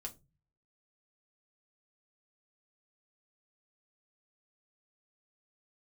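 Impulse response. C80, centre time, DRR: 26.0 dB, 7 ms, 1.0 dB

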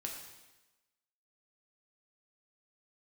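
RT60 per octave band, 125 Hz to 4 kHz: 1.0, 1.1, 1.1, 1.1, 1.1, 1.1 s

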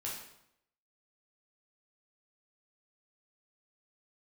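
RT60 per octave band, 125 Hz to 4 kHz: 0.85, 0.80, 0.75, 0.75, 0.70, 0.65 s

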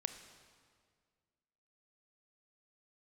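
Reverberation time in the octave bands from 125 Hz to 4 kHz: 2.2, 2.2, 2.0, 1.8, 1.7, 1.5 s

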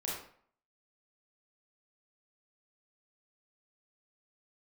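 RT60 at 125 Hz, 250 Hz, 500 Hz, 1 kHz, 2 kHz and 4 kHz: 0.50, 0.55, 0.55, 0.55, 0.50, 0.40 s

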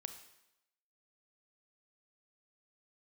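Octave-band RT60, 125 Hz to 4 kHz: 0.70, 0.85, 0.85, 0.90, 0.85, 0.85 s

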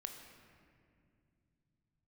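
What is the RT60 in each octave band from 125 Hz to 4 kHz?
4.8, 3.7, 2.7, 1.9, 2.0, 1.4 s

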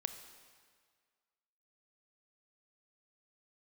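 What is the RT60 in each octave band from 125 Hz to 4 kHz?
1.7, 1.7, 1.8, 1.9, 1.7, 1.6 s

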